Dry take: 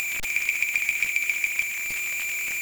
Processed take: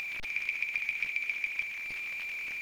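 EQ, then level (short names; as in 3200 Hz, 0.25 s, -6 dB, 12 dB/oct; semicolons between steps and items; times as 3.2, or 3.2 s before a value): polynomial smoothing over 15 samples; -8.0 dB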